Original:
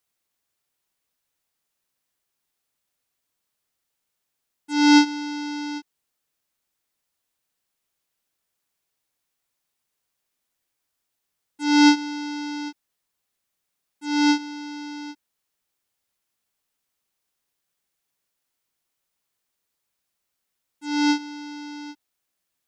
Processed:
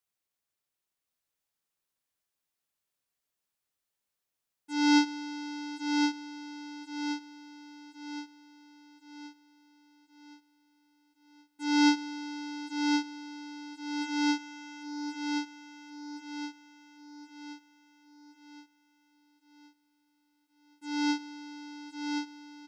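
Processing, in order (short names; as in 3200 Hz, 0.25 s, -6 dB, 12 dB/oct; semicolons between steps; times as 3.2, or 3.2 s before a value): feedback echo 1.071 s, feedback 47%, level -4.5 dB; gain -8.5 dB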